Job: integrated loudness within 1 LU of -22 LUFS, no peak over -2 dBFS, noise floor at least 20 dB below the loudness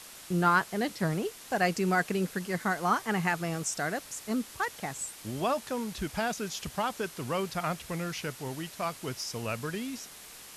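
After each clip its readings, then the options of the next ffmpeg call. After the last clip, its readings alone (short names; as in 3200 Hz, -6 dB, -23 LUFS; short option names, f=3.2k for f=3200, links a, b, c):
noise floor -48 dBFS; noise floor target -52 dBFS; loudness -31.5 LUFS; peak -12.5 dBFS; loudness target -22.0 LUFS
-> -af "afftdn=nr=6:nf=-48"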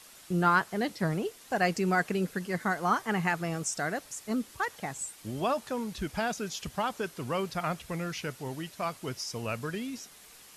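noise floor -53 dBFS; loudness -31.5 LUFS; peak -12.5 dBFS; loudness target -22.0 LUFS
-> -af "volume=9.5dB"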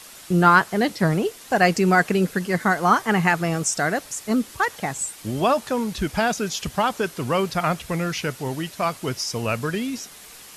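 loudness -22.0 LUFS; peak -3.0 dBFS; noise floor -44 dBFS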